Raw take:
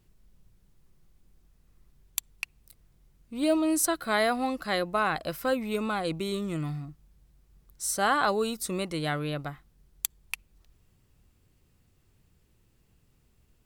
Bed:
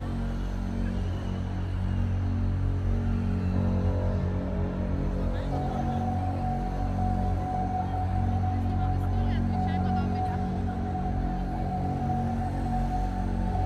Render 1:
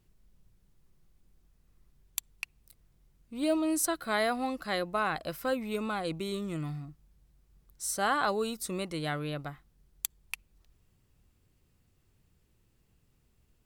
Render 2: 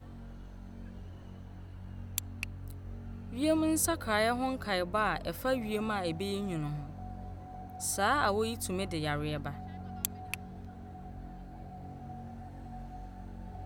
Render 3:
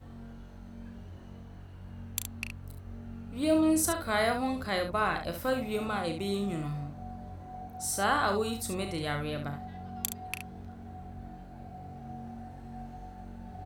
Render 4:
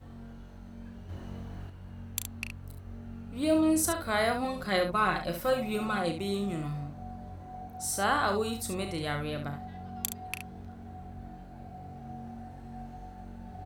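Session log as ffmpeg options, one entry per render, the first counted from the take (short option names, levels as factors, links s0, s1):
-af "volume=0.668"
-filter_complex "[1:a]volume=0.15[s0];[0:a][s0]amix=inputs=2:normalize=0"
-af "aecho=1:1:35|70:0.376|0.398"
-filter_complex "[0:a]asettb=1/sr,asplit=3[s0][s1][s2];[s0]atrim=end=1.094[s3];[s1]atrim=start=1.09:end=1.7,asetpts=PTS-STARTPTS,afade=t=in:d=0.004:c=qsin,afade=t=out:st=0.606:d=0.004:c=qsin,acontrast=50[s4];[s2]atrim=start=1.696[s5];[s3][s4]acrossfade=d=0.004:c1=hsin:c2=qsin[s6];[s6][s5]acrossfade=d=0.004:c1=qsin:c2=hsin,asettb=1/sr,asplit=3[s7][s8][s9];[s7]atrim=end=4.444[s10];[s8]atrim=start=4.44:end=6.11,asetpts=PTS-STARTPTS,afade=t=in:d=0.004:c=qsin,afade=t=out:st=1.666:d=0.004:c=qsin,aecho=1:1:5.5:0.65,atrim=end_sample=73647[s11];[s9]atrim=start=6.106[s12];[s10][s11]acrossfade=d=0.004:c1=hsin:c2=qsin[s13];[s13][s12]acrossfade=d=0.004:c1=qsin:c2=hsin"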